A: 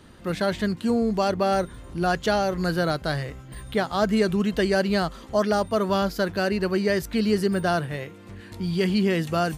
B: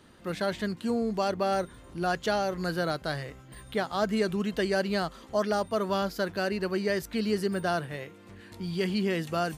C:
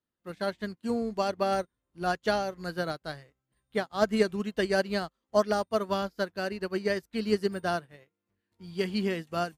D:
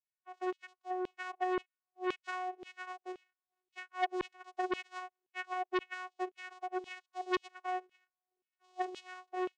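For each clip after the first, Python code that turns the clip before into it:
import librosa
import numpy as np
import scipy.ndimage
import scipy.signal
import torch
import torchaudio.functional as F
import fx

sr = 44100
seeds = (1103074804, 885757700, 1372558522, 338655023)

y1 = fx.low_shelf(x, sr, hz=130.0, db=-7.5)
y1 = y1 * 10.0 ** (-4.5 / 20.0)
y2 = fx.upward_expand(y1, sr, threshold_db=-49.0, expansion=2.5)
y2 = y2 * 10.0 ** (4.5 / 20.0)
y3 = fx.vocoder(y2, sr, bands=4, carrier='saw', carrier_hz=368.0)
y3 = fx.filter_lfo_highpass(y3, sr, shape='saw_down', hz=1.9, low_hz=360.0, high_hz=3100.0, q=2.4)
y3 = fx.transformer_sat(y3, sr, knee_hz=1900.0)
y3 = y3 * 10.0 ** (-6.0 / 20.0)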